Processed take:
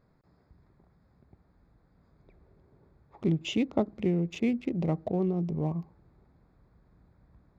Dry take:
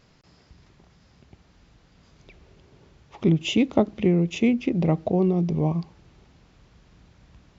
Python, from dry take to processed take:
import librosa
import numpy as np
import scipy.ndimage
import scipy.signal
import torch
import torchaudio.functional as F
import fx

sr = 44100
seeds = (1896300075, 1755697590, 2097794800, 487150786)

y = fx.wiener(x, sr, points=15)
y = y * 10.0 ** (-7.0 / 20.0)